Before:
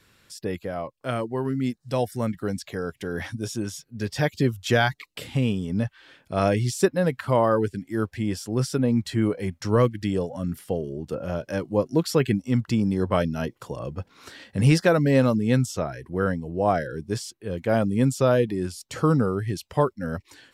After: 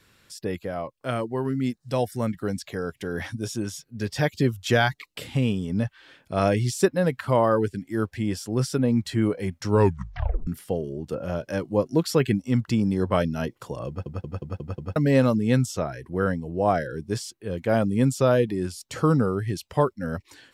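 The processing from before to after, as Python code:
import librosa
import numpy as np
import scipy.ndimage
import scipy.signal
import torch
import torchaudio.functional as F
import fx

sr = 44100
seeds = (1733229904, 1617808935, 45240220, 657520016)

y = fx.edit(x, sr, fx.tape_stop(start_s=9.71, length_s=0.76),
    fx.stutter_over(start_s=13.88, slice_s=0.18, count=6), tone=tone)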